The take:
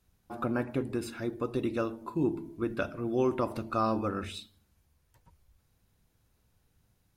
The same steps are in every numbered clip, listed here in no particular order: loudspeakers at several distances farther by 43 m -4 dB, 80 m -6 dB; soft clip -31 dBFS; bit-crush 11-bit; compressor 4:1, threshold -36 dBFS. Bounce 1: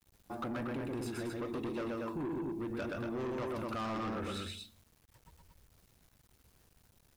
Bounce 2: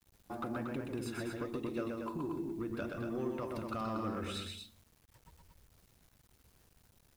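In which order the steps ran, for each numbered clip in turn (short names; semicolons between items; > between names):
loudspeakers at several distances > bit-crush > soft clip > compressor; compressor > soft clip > loudspeakers at several distances > bit-crush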